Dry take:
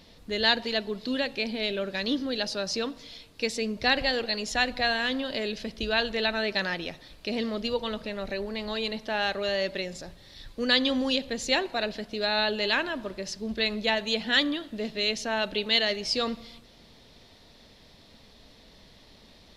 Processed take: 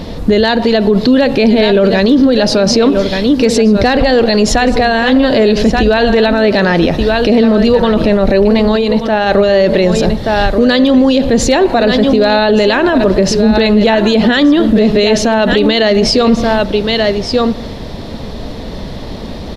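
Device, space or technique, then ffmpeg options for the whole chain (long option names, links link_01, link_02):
mastering chain: -filter_complex "[0:a]equalizer=frequency=2300:width_type=o:width=0.77:gain=-2,aecho=1:1:1180:0.237,acompressor=threshold=-30dB:ratio=2,tiltshelf=frequency=1500:gain=7,asoftclip=type=hard:threshold=-18dB,alimiter=level_in=26.5dB:limit=-1dB:release=50:level=0:latency=1,asplit=3[link_01][link_02][link_03];[link_01]afade=type=out:start_time=8.75:duration=0.02[link_04];[link_02]agate=range=-33dB:threshold=-5dB:ratio=3:detection=peak,afade=type=in:start_time=8.75:duration=0.02,afade=type=out:start_time=9.28:duration=0.02[link_05];[link_03]afade=type=in:start_time=9.28:duration=0.02[link_06];[link_04][link_05][link_06]amix=inputs=3:normalize=0,volume=-1dB"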